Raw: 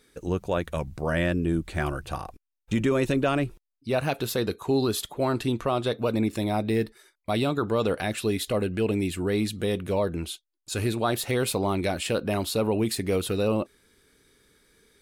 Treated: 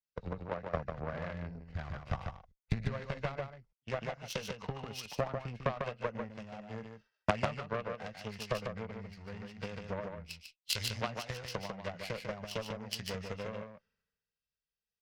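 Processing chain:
hearing-aid frequency compression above 1,400 Hz 1.5 to 1
Chebyshev band-stop filter 200–510 Hz, order 2
high-shelf EQ 6,800 Hz −9.5 dB
downward compressor 12 to 1, threshold −38 dBFS, peak gain reduction 17.5 dB
harmonic generator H 3 −11 dB, 6 −17 dB, 8 −20 dB, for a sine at −26.5 dBFS
on a send: single-tap delay 148 ms −3.5 dB
on the sum: multiband upward and downward expander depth 100%
level +11 dB

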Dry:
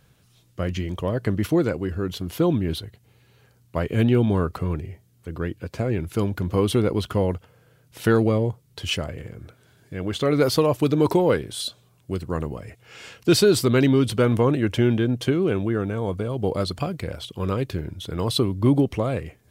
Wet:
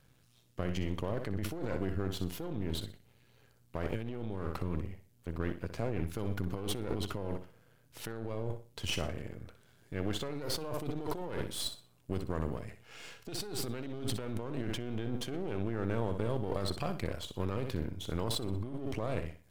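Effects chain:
gain on one half-wave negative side −12 dB
flutter between parallel walls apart 10.6 metres, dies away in 0.34 s
compressor whose output falls as the input rises −27 dBFS, ratio −1
level −8 dB

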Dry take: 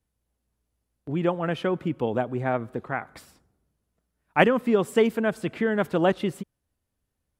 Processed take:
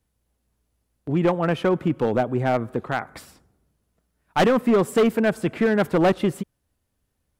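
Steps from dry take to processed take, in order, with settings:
dynamic equaliser 3,700 Hz, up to −4 dB, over −45 dBFS, Q 0.81
gain into a clipping stage and back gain 19 dB
level +5.5 dB

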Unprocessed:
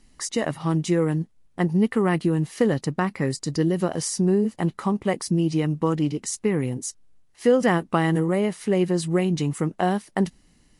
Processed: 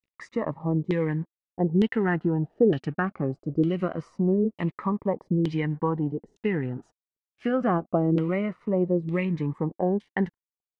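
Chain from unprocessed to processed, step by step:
dead-zone distortion −48.5 dBFS
auto-filter low-pass saw down 1.1 Hz 380–3,200 Hz
phaser whose notches keep moving one way falling 0.23 Hz
level −3 dB

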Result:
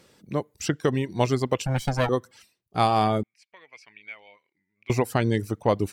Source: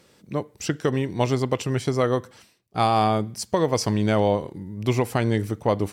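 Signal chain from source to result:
0:01.66–0:02.09: lower of the sound and its delayed copy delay 1.3 ms
reverb reduction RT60 0.54 s
0:03.23–0:04.90: resonant band-pass 2,300 Hz, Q 11

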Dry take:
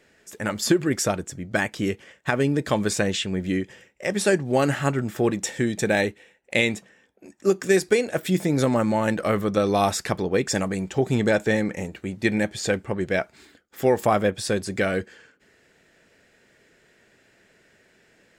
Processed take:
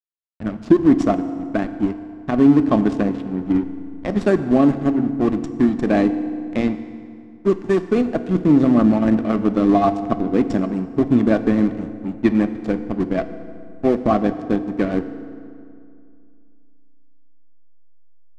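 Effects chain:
dynamic equaliser 330 Hz, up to +6 dB, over −36 dBFS, Q 2.3
rotating-speaker cabinet horn 0.65 Hz, later 7.5 Hz, at 0:06.84
in parallel at −5 dB: comparator with hysteresis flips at −18 dBFS
on the sum: hollow resonant body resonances 240/690/1,100 Hz, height 14 dB, ringing for 30 ms
slack as between gear wheels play −19 dBFS
high-frequency loss of the air 81 metres
on a send at −10 dB: convolution reverb RT60 2.4 s, pre-delay 3 ms
on the sum: level −4.5 dB

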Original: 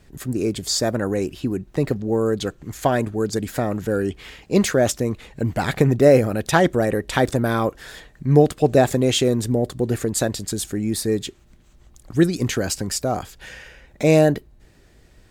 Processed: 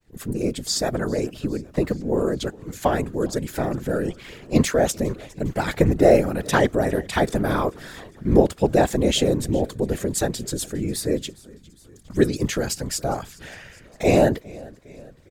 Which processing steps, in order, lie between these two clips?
downward expander −45 dBFS
echo with shifted repeats 407 ms, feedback 62%, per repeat −48 Hz, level −22.5 dB
random phases in short frames
level −2 dB

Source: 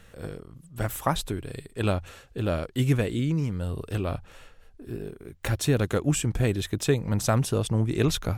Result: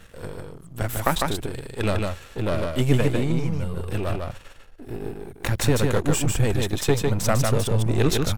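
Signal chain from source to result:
gain on one half-wave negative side −12 dB
single-tap delay 151 ms −3.5 dB
level +6 dB

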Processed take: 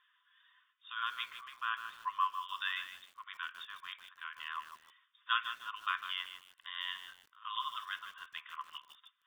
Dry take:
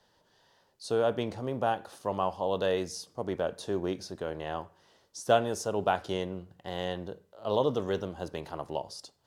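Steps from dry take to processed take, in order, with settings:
spectral magnitudes quantised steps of 15 dB
linear-phase brick-wall band-pass 990–3,700 Hz
feedback echo at a low word length 152 ms, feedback 35%, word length 9 bits, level −9.5 dB
level +3 dB

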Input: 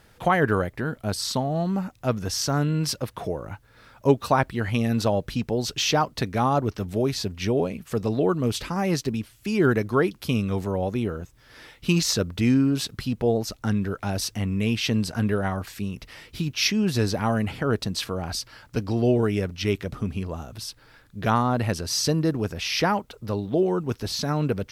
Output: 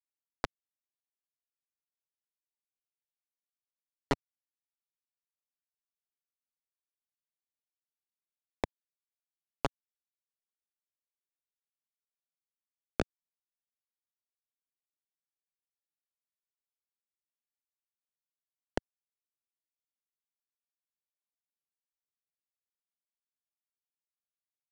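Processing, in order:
peak hold with a decay on every bin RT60 2.44 s
noise reduction from a noise print of the clip's start 7 dB
gate on every frequency bin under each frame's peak −10 dB strong
guitar amp tone stack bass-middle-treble 10-0-1
transient designer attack +5 dB, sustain −3 dB
in parallel at −2.5 dB: downward compressor 5 to 1, threshold −48 dBFS, peak gain reduction 17.5 dB
on the sum: formants moved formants +3 semitones
auto-filter notch square 5.6 Hz 330–4,300 Hz
phaser with its sweep stopped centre 860 Hz, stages 8
bit reduction 5 bits
high-frequency loss of the air 84 metres
multiband upward and downward compressor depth 70%
level +13 dB

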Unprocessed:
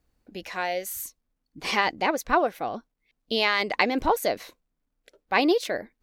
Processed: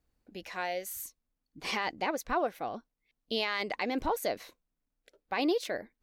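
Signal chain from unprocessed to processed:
brickwall limiter −13.5 dBFS, peak gain reduction 9.5 dB
level −6 dB

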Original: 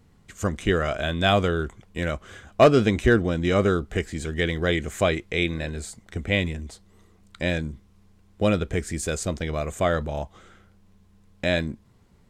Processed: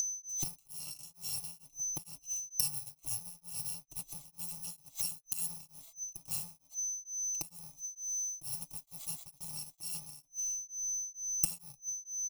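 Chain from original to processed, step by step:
samples in bit-reversed order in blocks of 128 samples
high-shelf EQ 3,100 Hz −8 dB
0:07.71–0:09.73: bit-depth reduction 10 bits, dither triangular
noise gate −41 dBFS, range −19 dB
speech leveller within 4 dB 0.5 s
steady tone 6,100 Hz −41 dBFS
gate with flip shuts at −28 dBFS, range −27 dB
leveller curve on the samples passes 1
bass and treble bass −3 dB, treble +9 dB
phaser with its sweep stopped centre 320 Hz, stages 8
comb filter 6 ms, depth 62%
tremolo along a rectified sine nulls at 2.2 Hz
level +6 dB

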